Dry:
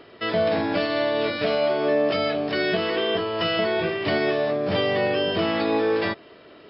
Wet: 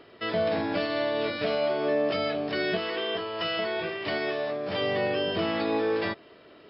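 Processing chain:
0:02.78–0:04.81: low-shelf EQ 380 Hz −7.5 dB
level −4.5 dB

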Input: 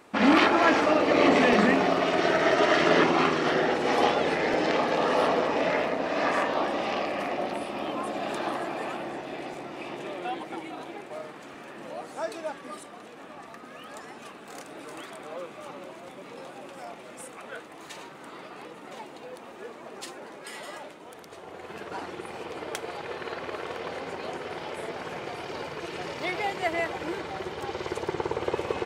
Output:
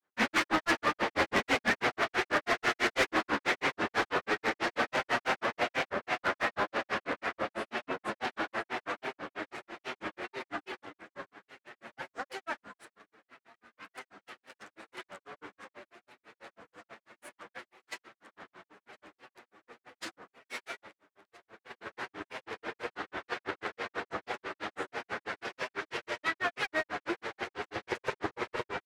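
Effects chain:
lower of the sound and its delayed copy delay 9 ms
meter weighting curve D
downward expander −33 dBFS
high shelf with overshoot 2,200 Hz −8.5 dB, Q 1.5
in parallel at −0.5 dB: downward compressor, threshold −34 dBFS, peak gain reduction 19 dB
on the sum: gain into a clipping stage and back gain 18.5 dB
granular cloud 118 ms, grains 6.1 per second, spray 14 ms, pitch spread up and down by 3 semitones
level −2.5 dB

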